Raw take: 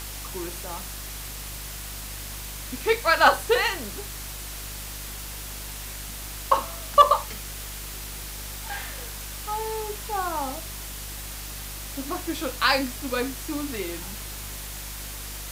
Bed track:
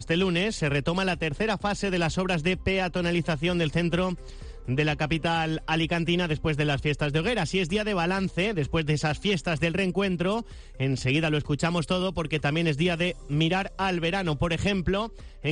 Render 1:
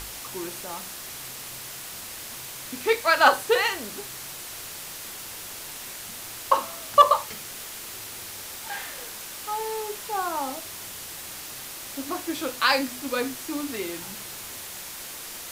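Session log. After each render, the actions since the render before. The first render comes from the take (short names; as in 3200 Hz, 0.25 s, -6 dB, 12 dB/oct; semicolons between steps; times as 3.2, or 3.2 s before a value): de-hum 50 Hz, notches 6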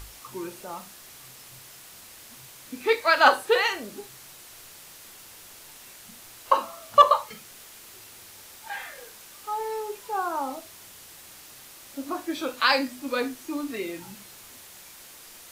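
noise print and reduce 9 dB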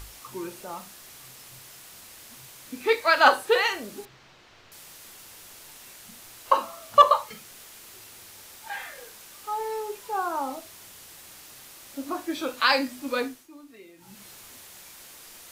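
4.05–4.72 air absorption 200 m; 13.18–14.27 dip -16.5 dB, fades 0.30 s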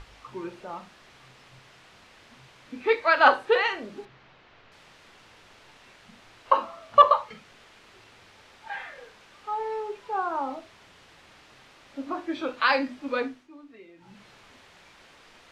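LPF 3000 Hz 12 dB/oct; notches 50/100/150/200/250/300/350 Hz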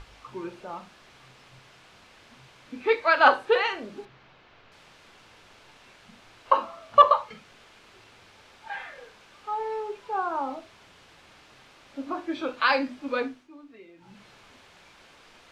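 notch 1900 Hz, Q 22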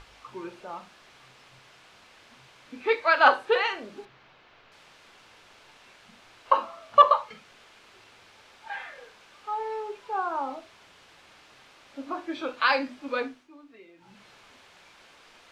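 low shelf 290 Hz -6.5 dB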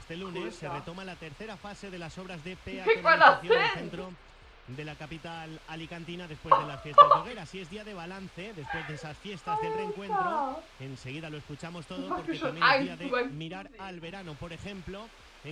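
add bed track -15.5 dB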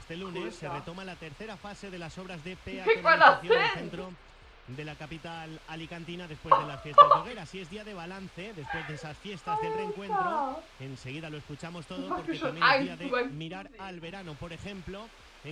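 nothing audible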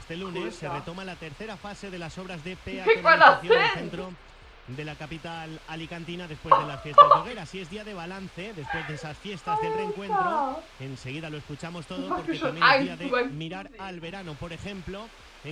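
gain +4 dB; limiter -3 dBFS, peak gain reduction 1.5 dB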